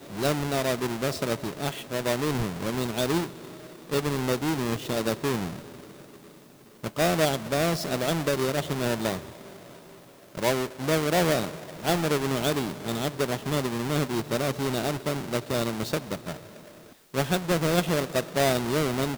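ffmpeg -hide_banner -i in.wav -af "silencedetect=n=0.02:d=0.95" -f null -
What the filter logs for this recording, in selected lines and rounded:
silence_start: 5.59
silence_end: 6.84 | silence_duration: 1.25
silence_start: 9.20
silence_end: 10.35 | silence_duration: 1.15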